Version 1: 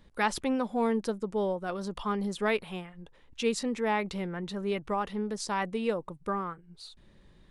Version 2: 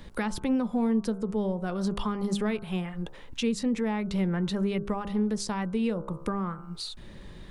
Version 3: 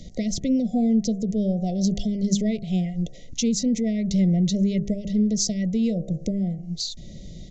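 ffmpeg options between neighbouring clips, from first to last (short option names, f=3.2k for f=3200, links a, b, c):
-filter_complex "[0:a]asplit=2[a][b];[b]acompressor=threshold=-38dB:ratio=6,volume=-1.5dB[c];[a][c]amix=inputs=2:normalize=0,bandreject=f=67.35:t=h:w=4,bandreject=f=134.7:t=h:w=4,bandreject=f=202.05:t=h:w=4,bandreject=f=269.4:t=h:w=4,bandreject=f=336.75:t=h:w=4,bandreject=f=404.1:t=h:w=4,bandreject=f=471.45:t=h:w=4,bandreject=f=538.8:t=h:w=4,bandreject=f=606.15:t=h:w=4,bandreject=f=673.5:t=h:w=4,bandreject=f=740.85:t=h:w=4,bandreject=f=808.2:t=h:w=4,bandreject=f=875.55:t=h:w=4,bandreject=f=942.9:t=h:w=4,bandreject=f=1.01025k:t=h:w=4,bandreject=f=1.0776k:t=h:w=4,bandreject=f=1.14495k:t=h:w=4,bandreject=f=1.2123k:t=h:w=4,bandreject=f=1.27965k:t=h:w=4,bandreject=f=1.347k:t=h:w=4,bandreject=f=1.41435k:t=h:w=4,bandreject=f=1.4817k:t=h:w=4,bandreject=f=1.54905k:t=h:w=4,acrossover=split=230[d][e];[e]acompressor=threshold=-42dB:ratio=4[f];[d][f]amix=inputs=2:normalize=0,volume=8dB"
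-af "afftfilt=real='re*(1-between(b*sr/4096,750,1900))':imag='im*(1-between(b*sr/4096,750,1900))':win_size=4096:overlap=0.75,aresample=16000,aresample=44100,equalizer=f=160:t=o:w=0.67:g=5,equalizer=f=400:t=o:w=0.67:g=-6,equalizer=f=2.5k:t=o:w=0.67:g=-12,equalizer=f=6.3k:t=o:w=0.67:g=12,volume=5dB"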